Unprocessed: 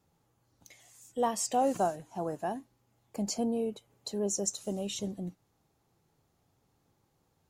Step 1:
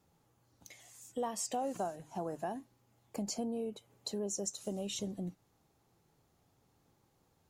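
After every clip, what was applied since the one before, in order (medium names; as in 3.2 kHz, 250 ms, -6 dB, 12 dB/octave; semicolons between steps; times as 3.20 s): hum notches 50/100/150 Hz; compression 3:1, threshold -37 dBFS, peak gain reduction 10.5 dB; trim +1 dB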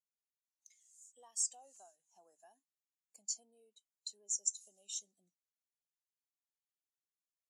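band-pass filter 7.7 kHz, Q 1.2; spectral contrast expander 1.5:1; trim +5 dB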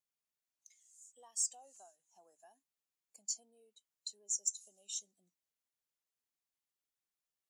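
saturation -21 dBFS, distortion -23 dB; trim +1 dB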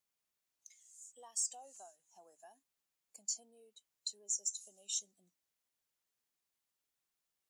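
peak limiter -30 dBFS, peak gain reduction 8 dB; trim +4 dB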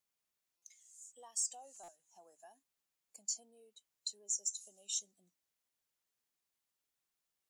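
buffer glitch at 0.57/1.83 s, samples 256, times 8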